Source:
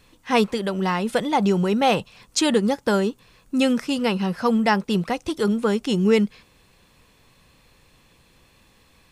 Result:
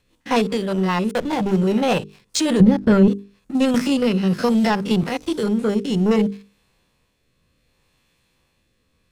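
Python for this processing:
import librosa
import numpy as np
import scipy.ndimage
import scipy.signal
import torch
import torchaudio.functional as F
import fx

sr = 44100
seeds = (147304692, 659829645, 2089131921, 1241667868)

y = fx.spec_steps(x, sr, hold_ms=50)
y = fx.backlash(y, sr, play_db=-22.5, at=(1.11, 1.57))
y = fx.rotary_switch(y, sr, hz=5.0, then_hz=0.65, switch_at_s=3.06)
y = fx.leveller(y, sr, passes=2)
y = fx.bass_treble(y, sr, bass_db=14, treble_db=-12, at=(2.6, 3.08))
y = fx.hum_notches(y, sr, base_hz=50, count=9)
y = fx.band_squash(y, sr, depth_pct=100, at=(3.74, 5.03))
y = y * 10.0 ** (-1.0 / 20.0)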